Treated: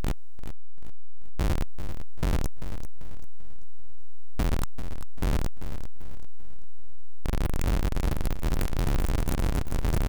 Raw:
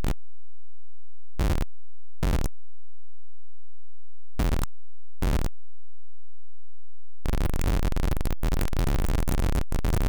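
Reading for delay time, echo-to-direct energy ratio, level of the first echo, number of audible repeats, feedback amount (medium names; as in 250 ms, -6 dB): 391 ms, -10.5 dB, -11.0 dB, 3, 38%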